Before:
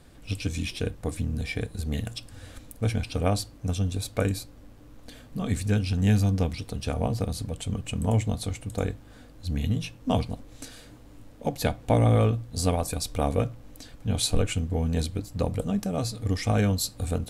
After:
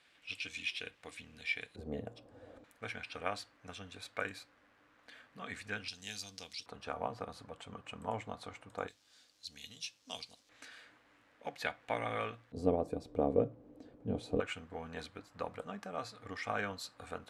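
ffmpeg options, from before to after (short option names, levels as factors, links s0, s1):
-af "asetnsamples=n=441:p=0,asendcmd='1.76 bandpass f 530;2.64 bandpass f 1700;5.88 bandpass f 4800;6.66 bandpass f 1200;8.88 bandpass f 5100;10.49 bandpass f 1800;12.52 bandpass f 390;14.4 bandpass f 1400',bandpass=f=2500:t=q:w=1.6:csg=0"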